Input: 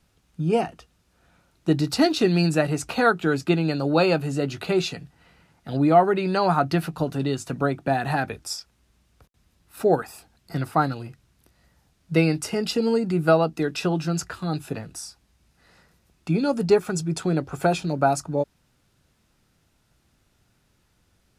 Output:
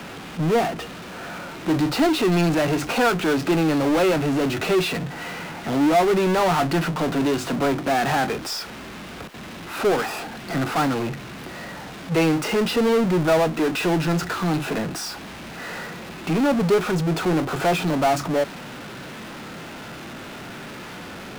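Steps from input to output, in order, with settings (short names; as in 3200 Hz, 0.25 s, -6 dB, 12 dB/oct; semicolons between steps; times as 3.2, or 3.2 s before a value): three-band isolator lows -22 dB, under 170 Hz, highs -21 dB, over 3500 Hz; power-law curve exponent 0.35; harmonic-percussive split percussive -4 dB; gain -5.5 dB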